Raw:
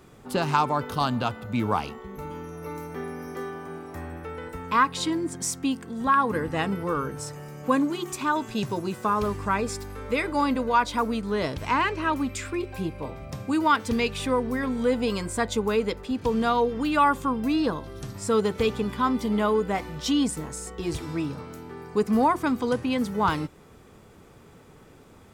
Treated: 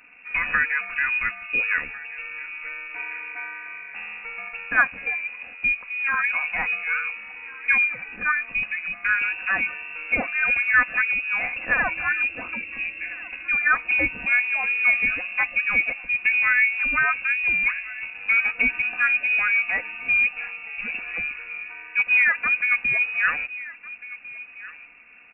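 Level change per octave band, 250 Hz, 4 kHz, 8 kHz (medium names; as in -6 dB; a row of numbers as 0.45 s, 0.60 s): -17.5 dB, no reading, under -40 dB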